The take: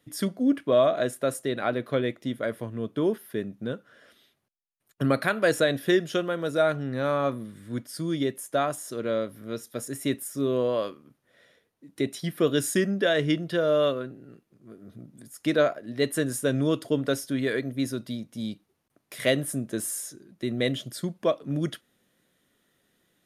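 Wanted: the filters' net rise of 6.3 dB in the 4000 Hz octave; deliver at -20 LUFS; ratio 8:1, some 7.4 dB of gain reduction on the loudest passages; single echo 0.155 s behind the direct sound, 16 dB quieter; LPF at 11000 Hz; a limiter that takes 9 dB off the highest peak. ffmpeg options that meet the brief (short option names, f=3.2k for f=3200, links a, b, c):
-af "lowpass=11k,equalizer=f=4k:t=o:g=7.5,acompressor=threshold=-24dB:ratio=8,alimiter=limit=-20.5dB:level=0:latency=1,aecho=1:1:155:0.158,volume=12.5dB"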